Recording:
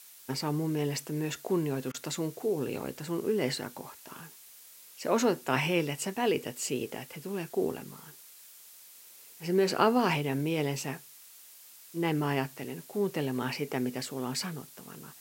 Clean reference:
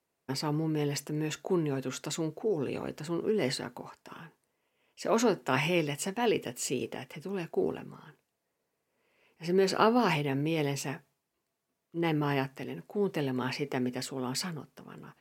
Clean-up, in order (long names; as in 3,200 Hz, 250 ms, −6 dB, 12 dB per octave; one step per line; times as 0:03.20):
repair the gap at 0:01.92, 22 ms
noise reduction from a noise print 28 dB